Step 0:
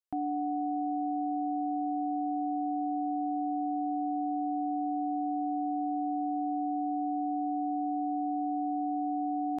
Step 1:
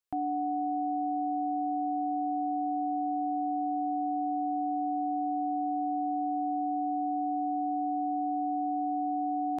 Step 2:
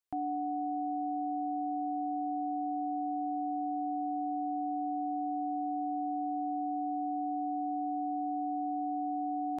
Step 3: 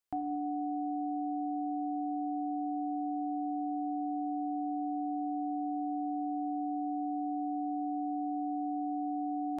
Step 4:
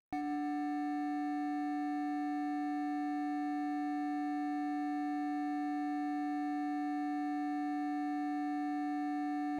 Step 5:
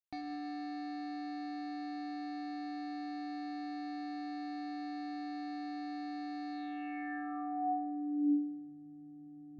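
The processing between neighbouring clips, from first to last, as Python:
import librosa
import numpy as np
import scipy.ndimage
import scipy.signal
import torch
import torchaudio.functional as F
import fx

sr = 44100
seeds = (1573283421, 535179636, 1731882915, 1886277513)

y1 = fx.peak_eq(x, sr, hz=240.0, db=-5.5, octaves=0.77)
y1 = F.gain(torch.from_numpy(y1), 2.5).numpy()
y2 = y1 + 10.0 ** (-22.5 / 20.0) * np.pad(y1, (int(229 * sr / 1000.0), 0))[:len(y1)]
y2 = F.gain(torch.from_numpy(y2), -3.0).numpy()
y3 = fx.rev_gated(y2, sr, seeds[0], gate_ms=370, shape='falling', drr_db=8.5)
y3 = F.gain(torch.from_numpy(y3), 1.0).numpy()
y4 = scipy.ndimage.median_filter(y3, 41, mode='constant')
y5 = fx.filter_sweep_lowpass(y4, sr, from_hz=4600.0, to_hz=150.0, start_s=6.51, end_s=8.75, q=5.8)
y5 = F.gain(torch.from_numpy(y5), -5.0).numpy()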